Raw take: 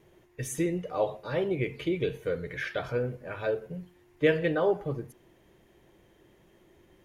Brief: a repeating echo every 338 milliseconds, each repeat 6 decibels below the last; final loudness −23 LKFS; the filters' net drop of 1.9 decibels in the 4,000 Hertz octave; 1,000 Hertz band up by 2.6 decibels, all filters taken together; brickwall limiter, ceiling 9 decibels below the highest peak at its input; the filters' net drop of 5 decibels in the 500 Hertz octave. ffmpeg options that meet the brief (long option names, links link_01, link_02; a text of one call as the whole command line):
ffmpeg -i in.wav -af "equalizer=frequency=500:width_type=o:gain=-7.5,equalizer=frequency=1000:width_type=o:gain=6.5,equalizer=frequency=4000:width_type=o:gain=-3,alimiter=limit=-24dB:level=0:latency=1,aecho=1:1:338|676|1014|1352|1690|2028:0.501|0.251|0.125|0.0626|0.0313|0.0157,volume=12dB" out.wav